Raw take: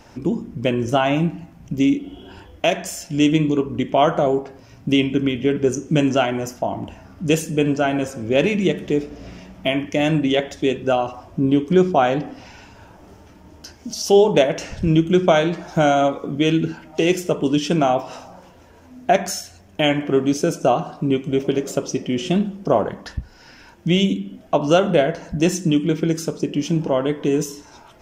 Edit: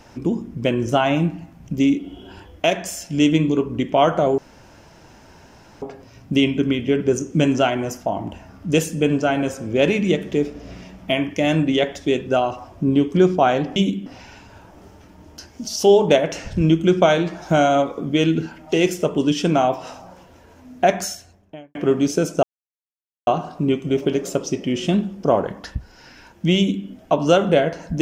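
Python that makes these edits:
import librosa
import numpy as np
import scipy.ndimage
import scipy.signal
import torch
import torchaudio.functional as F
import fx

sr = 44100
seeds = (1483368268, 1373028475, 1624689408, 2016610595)

y = fx.studio_fade_out(x, sr, start_s=19.26, length_s=0.75)
y = fx.edit(y, sr, fx.insert_room_tone(at_s=4.38, length_s=1.44),
    fx.insert_silence(at_s=20.69, length_s=0.84),
    fx.duplicate(start_s=23.99, length_s=0.3, to_s=12.32), tone=tone)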